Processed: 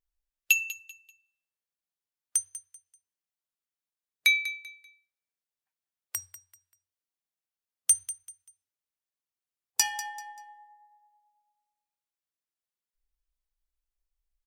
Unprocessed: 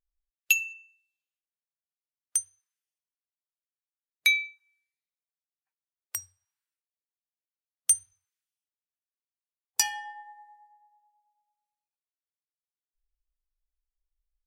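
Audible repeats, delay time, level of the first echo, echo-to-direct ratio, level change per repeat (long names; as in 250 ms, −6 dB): 2, 194 ms, −14.5 dB, −14.0 dB, −10.5 dB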